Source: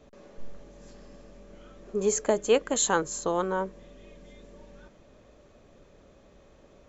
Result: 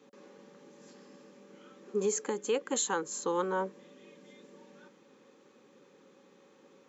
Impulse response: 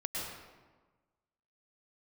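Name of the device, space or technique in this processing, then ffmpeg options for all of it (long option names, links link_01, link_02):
PA system with an anti-feedback notch: -af "highpass=frequency=190:width=0.5412,highpass=frequency=190:width=1.3066,asuperstop=centerf=650:order=12:qfactor=3.9,alimiter=limit=-19.5dB:level=0:latency=1:release=318,volume=-1.5dB"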